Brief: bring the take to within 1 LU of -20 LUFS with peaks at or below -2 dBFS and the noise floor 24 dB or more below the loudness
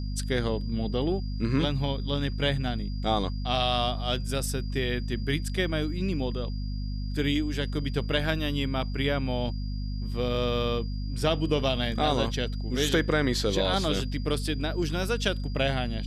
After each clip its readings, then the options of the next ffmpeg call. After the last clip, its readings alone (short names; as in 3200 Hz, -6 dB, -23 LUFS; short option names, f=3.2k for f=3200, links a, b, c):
hum 50 Hz; harmonics up to 250 Hz; hum level -29 dBFS; steady tone 4800 Hz; tone level -48 dBFS; loudness -28.5 LUFS; peak -11.5 dBFS; loudness target -20.0 LUFS
-> -af "bandreject=f=50:t=h:w=4,bandreject=f=100:t=h:w=4,bandreject=f=150:t=h:w=4,bandreject=f=200:t=h:w=4,bandreject=f=250:t=h:w=4"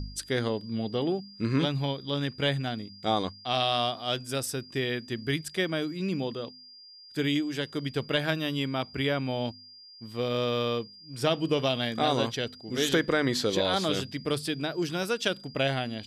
hum none; steady tone 4800 Hz; tone level -48 dBFS
-> -af "bandreject=f=4.8k:w=30"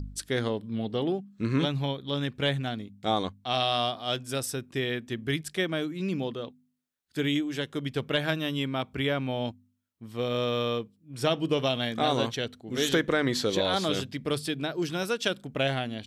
steady tone none; loudness -29.5 LUFS; peak -12.5 dBFS; loudness target -20.0 LUFS
-> -af "volume=9.5dB"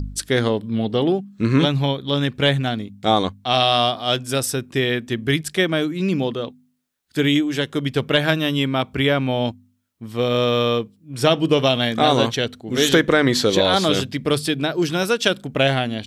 loudness -20.0 LUFS; peak -3.0 dBFS; noise floor -60 dBFS